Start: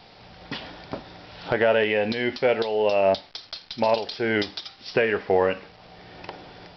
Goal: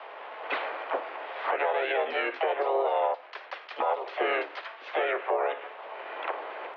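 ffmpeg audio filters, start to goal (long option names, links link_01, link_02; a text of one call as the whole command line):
ffmpeg -i in.wav -filter_complex "[0:a]acompressor=threshold=-27dB:ratio=12,asoftclip=type=tanh:threshold=-18.5dB,highpass=frequency=420:width_type=q:width=0.5412,highpass=frequency=420:width_type=q:width=1.307,lowpass=frequency=2400:width_type=q:width=0.5176,lowpass=frequency=2400:width_type=q:width=0.7071,lowpass=frequency=2400:width_type=q:width=1.932,afreqshift=110,asplit=4[link_01][link_02][link_03][link_04];[link_02]asetrate=29433,aresample=44100,atempo=1.49831,volume=-17dB[link_05];[link_03]asetrate=33038,aresample=44100,atempo=1.33484,volume=0dB[link_06];[link_04]asetrate=55563,aresample=44100,atempo=0.793701,volume=-2dB[link_07];[link_01][link_05][link_06][link_07]amix=inputs=4:normalize=0,alimiter=limit=-22dB:level=0:latency=1:release=204,volume=5dB" out.wav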